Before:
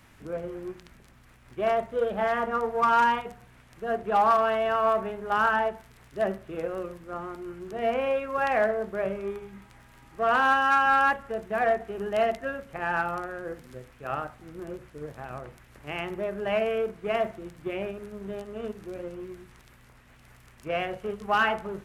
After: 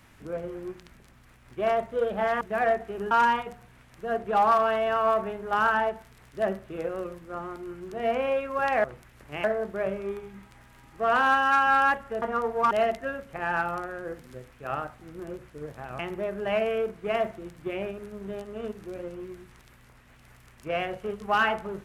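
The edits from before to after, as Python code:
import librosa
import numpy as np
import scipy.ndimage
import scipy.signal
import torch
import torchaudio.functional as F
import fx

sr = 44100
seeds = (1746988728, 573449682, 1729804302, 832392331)

y = fx.edit(x, sr, fx.swap(start_s=2.41, length_s=0.49, other_s=11.41, other_length_s=0.7),
    fx.move(start_s=15.39, length_s=0.6, to_s=8.63), tone=tone)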